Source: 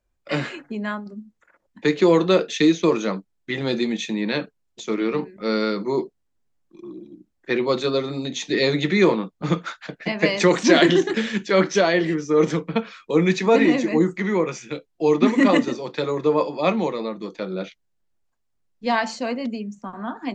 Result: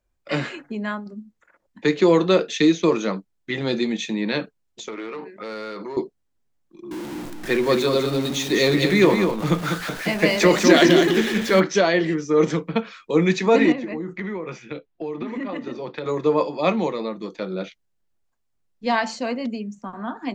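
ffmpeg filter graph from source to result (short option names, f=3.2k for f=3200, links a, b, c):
-filter_complex "[0:a]asettb=1/sr,asplit=3[a][b][c];[a]atrim=end=4.884[d];[b]atrim=start=4.88:end=5.97,asetpts=PTS-STARTPTS,afade=t=in:d=0.004:c=qsin,afade=t=out:st=1.086:d=0.004:c=qsin,asplit=2[e][f];[f]highpass=f=720:p=1,volume=15dB,asoftclip=type=tanh:threshold=-11dB[g];[e][g]amix=inputs=2:normalize=0,lowpass=f=2.1k:p=1,volume=-6dB,lowshelf=f=150:g=-11,acompressor=threshold=-29dB:ratio=12:attack=3.2:release=140:knee=1:detection=peak[h];[c]atrim=start=5.966[i];[d][h]acrossfade=d=0.004:c1=hsin:c2=qsin[j];[j][i]acrossfade=d=0.004:c1=qsin:c2=hsin,asettb=1/sr,asplit=3[k][l][m];[k]atrim=end=6.914[n];[l]atrim=start=6.91:end=11.6,asetpts=PTS-STARTPTS,afade=t=in:d=0.004:c=qsin,afade=t=out:st=4.686:d=0.004:c=qsin,aeval=exprs='val(0)+0.5*0.0355*sgn(val(0))':c=same,aecho=1:1:200:0.501,atrim=end_sample=206829[o];[m]atrim=start=11.596[p];[n][o]acrossfade=d=0.004:c1=hsin:c2=qsin[q];[q][p]acrossfade=d=0.004:c1=qsin:c2=hsin,asettb=1/sr,asplit=3[r][s][t];[r]atrim=end=13.724[u];[s]atrim=start=13.72:end=16.06,asetpts=PTS-STARTPTS,afade=t=in:d=0.004:c=qsin,afade=t=out:st=2.336:d=0.004:c=qsin,lowpass=3.2k,acompressor=threshold=-25dB:ratio=12:attack=3.2:release=140:knee=1:detection=peak[v];[t]atrim=start=16.056[w];[u][v]acrossfade=d=0.004:c1=hsin:c2=qsin[x];[x][w]acrossfade=d=0.004:c1=qsin:c2=hsin"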